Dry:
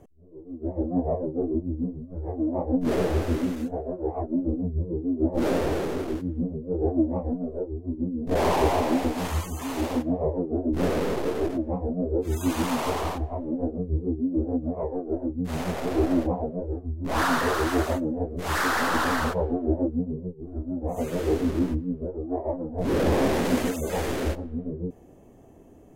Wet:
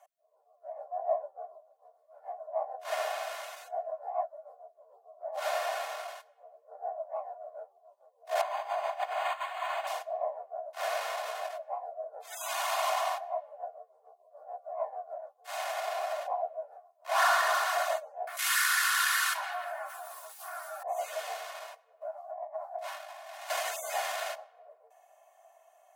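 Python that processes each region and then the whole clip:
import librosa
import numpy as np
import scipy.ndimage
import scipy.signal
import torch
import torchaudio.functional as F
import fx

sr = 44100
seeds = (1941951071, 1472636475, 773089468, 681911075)

y = fx.chain(x, sr, fx.doubler(ms=15.0, db=-7.5),
    fx.over_compress(threshold_db=-28.0, ratio=-1.0),
    fx.resample_linear(factor=8), at=(8.41, 9.87))
y = fx.chain(y, sr, fx.cheby2_highpass(hz=240.0, order=4, stop_db=80),
    fx.peak_eq(hz=11000.0, db=8.5, octaves=0.9),
    fx.env_flatten(amount_pct=70), at=(18.27, 20.83))
y = fx.chain(y, sr, fx.brickwall_highpass(low_hz=560.0),
    fx.over_compress(threshold_db=-42.0, ratio=-1.0), at=(22.01, 23.5))
y = scipy.signal.sosfilt(scipy.signal.butter(16, 560.0, 'highpass', fs=sr, output='sos'), y)
y = y + 0.77 * np.pad(y, (int(2.8 * sr / 1000.0), 0))[:len(y)]
y = F.gain(torch.from_numpy(y), -2.0).numpy()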